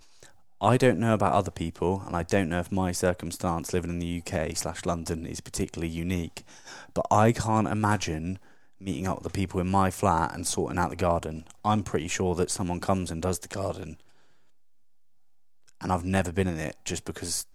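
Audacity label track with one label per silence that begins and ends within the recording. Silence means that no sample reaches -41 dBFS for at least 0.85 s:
14.000000	15.690000	silence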